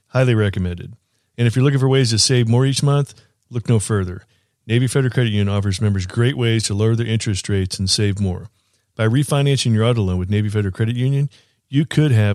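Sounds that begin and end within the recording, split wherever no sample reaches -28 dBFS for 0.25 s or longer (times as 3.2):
1.38–3.11
3.53–4.18
4.69–8.46
8.99–11.27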